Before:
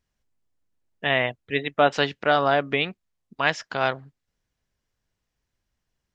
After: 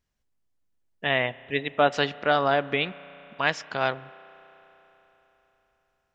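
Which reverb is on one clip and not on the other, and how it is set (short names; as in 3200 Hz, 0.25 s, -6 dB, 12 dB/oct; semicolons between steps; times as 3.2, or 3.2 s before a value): spring tank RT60 4 s, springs 33 ms, chirp 65 ms, DRR 18 dB; gain -2 dB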